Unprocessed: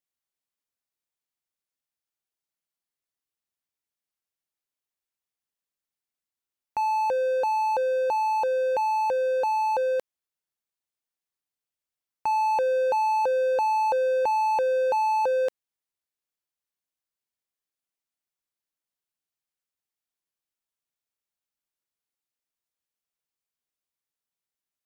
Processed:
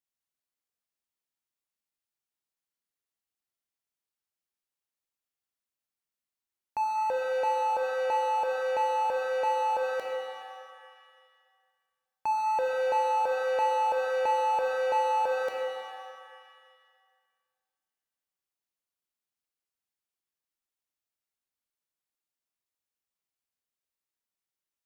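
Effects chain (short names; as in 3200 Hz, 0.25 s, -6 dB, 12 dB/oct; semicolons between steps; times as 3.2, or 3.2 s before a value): band-limited delay 71 ms, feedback 82%, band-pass 1400 Hz, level -16 dB; shimmer reverb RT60 1.9 s, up +7 st, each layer -8 dB, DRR 2 dB; gain -4.5 dB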